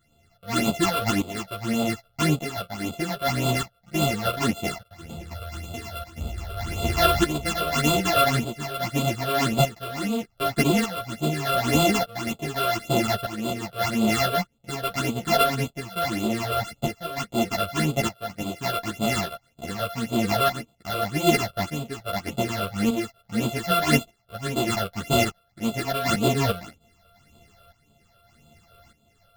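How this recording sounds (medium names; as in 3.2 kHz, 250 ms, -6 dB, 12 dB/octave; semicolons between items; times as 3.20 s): a buzz of ramps at a fixed pitch in blocks of 64 samples; phasing stages 8, 1.8 Hz, lowest notch 250–1800 Hz; tremolo saw up 0.83 Hz, depth 75%; a shimmering, thickened sound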